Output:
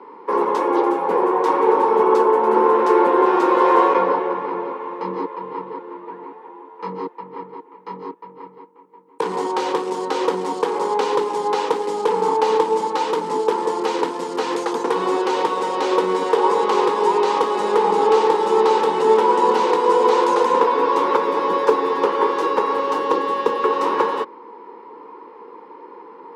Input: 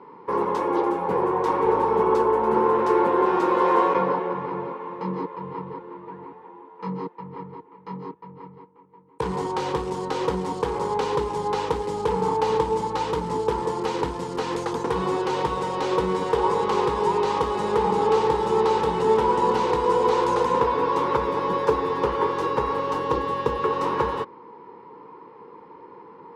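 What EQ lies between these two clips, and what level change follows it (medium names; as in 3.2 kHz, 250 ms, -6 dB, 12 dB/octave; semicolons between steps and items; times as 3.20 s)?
high-pass 250 Hz 24 dB/octave; +5.0 dB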